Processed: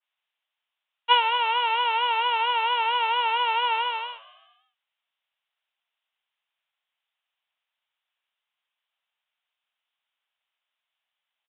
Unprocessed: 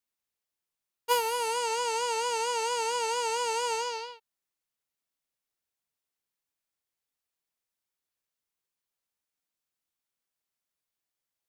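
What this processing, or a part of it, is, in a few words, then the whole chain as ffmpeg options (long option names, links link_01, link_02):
musical greeting card: -filter_complex "[0:a]highpass=390,asplit=6[link_01][link_02][link_03][link_04][link_05][link_06];[link_02]adelay=111,afreqshift=58,volume=-22.5dB[link_07];[link_03]adelay=222,afreqshift=116,volume=-26.2dB[link_08];[link_04]adelay=333,afreqshift=174,volume=-30dB[link_09];[link_05]adelay=444,afreqshift=232,volume=-33.7dB[link_10];[link_06]adelay=555,afreqshift=290,volume=-37.5dB[link_11];[link_01][link_07][link_08][link_09][link_10][link_11]amix=inputs=6:normalize=0,aresample=8000,aresample=44100,highpass=frequency=650:width=0.5412,highpass=frequency=650:width=1.3066,equalizer=frequency=3000:width_type=o:width=0.58:gain=6,adynamicequalizer=threshold=0.00794:dfrequency=2300:dqfactor=0.7:tfrequency=2300:tqfactor=0.7:attack=5:release=100:ratio=0.375:range=2:mode=cutabove:tftype=highshelf,volume=8dB"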